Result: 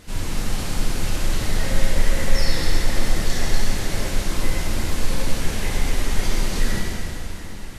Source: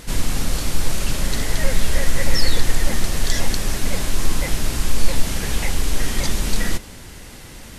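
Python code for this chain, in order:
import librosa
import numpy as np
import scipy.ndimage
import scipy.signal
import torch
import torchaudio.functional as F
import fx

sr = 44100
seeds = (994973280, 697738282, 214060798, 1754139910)

y = fx.high_shelf(x, sr, hz=6100.0, db=-5.0)
y = fx.rev_plate(y, sr, seeds[0], rt60_s=3.5, hf_ratio=0.85, predelay_ms=0, drr_db=-6.5)
y = F.gain(torch.from_numpy(y), -8.0).numpy()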